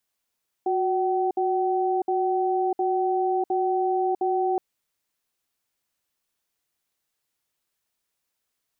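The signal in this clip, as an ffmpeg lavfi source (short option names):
-f lavfi -i "aevalsrc='0.0668*(sin(2*PI*367*t)+sin(2*PI*761*t))*clip(min(mod(t,0.71),0.65-mod(t,0.71))/0.005,0,1)':d=3.92:s=44100"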